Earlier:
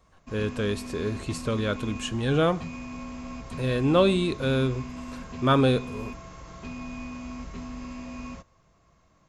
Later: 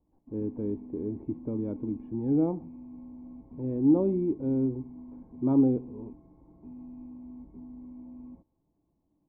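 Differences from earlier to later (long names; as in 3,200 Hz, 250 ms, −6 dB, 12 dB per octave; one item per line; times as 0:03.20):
speech +5.5 dB
master: add formant resonators in series u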